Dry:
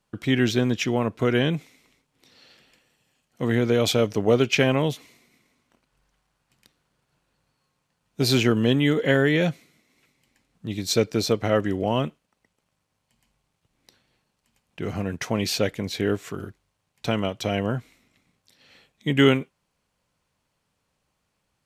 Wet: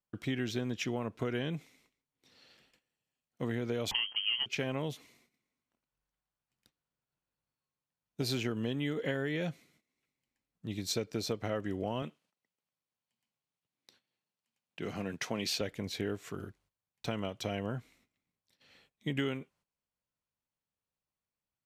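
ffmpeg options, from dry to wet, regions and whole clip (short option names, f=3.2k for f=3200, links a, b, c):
-filter_complex "[0:a]asettb=1/sr,asplit=3[a][b][c];[a]atrim=end=3.914[d];[b]atrim=start=3.91:end=4.46,asetpts=PTS-STARTPTS,afade=t=in:d=0.004:c=qsin,afade=t=out:st=0.546:d=0.004:c=qsin,acontrast=38,lowpass=f=2.8k:t=q:w=0.5098,lowpass=f=2.8k:t=q:w=0.6013,lowpass=f=2.8k:t=q:w=0.9,lowpass=f=2.8k:t=q:w=2.563,afreqshift=-3300[e];[c]atrim=start=4.456[f];[d][e]acrossfade=d=0.004:c1=hsin:c2=qsin[g];[g][f]acrossfade=d=0.004:c1=qsin:c2=hsin,asettb=1/sr,asplit=3[h][i][j];[h]atrim=end=12.024[k];[i]atrim=start=12.02:end=15.61,asetpts=PTS-STARTPTS,afade=t=in:d=0.004:c=qsin,afade=t=out:st=3.586:d=0.004:c=qsin,highpass=140,equalizer=f=3.6k:w=0.75:g=4.5[l];[j]atrim=start=15.606[m];[k][l]acrossfade=d=0.004:c1=hsin:c2=qsin[n];[n][m]acrossfade=d=0.004:c1=qsin:c2=hsin,acompressor=threshold=-22dB:ratio=6,agate=range=-13dB:threshold=-59dB:ratio=16:detection=peak,volume=-8dB"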